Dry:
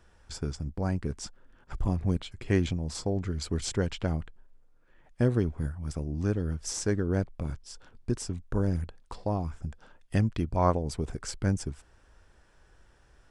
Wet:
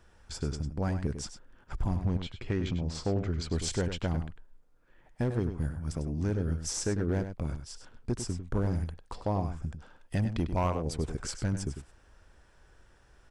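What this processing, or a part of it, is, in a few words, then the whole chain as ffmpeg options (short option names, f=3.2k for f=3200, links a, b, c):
limiter into clipper: -filter_complex "[0:a]alimiter=limit=-17.5dB:level=0:latency=1:release=197,asoftclip=type=hard:threshold=-22dB,asettb=1/sr,asplit=3[a][b][c];[a]atrim=end=2.034[d];[b]atrim=start=2.03:end=3.51,asetpts=PTS-STARTPTS,afade=t=in:d=0.004:c=qsin,afade=t=out:st=1.476:d=0.004:c=qsin,lowpass=5.5k[e];[c]atrim=start=3.506[f];[d][e]acrossfade=d=0.004:c1=hsin:c2=qsin[g];[g][f]acrossfade=d=0.004:c1=qsin:c2=hsin,asplit=2[h][i];[i]adelay=99.13,volume=-9dB,highshelf=f=4k:g=-2.23[j];[h][j]amix=inputs=2:normalize=0"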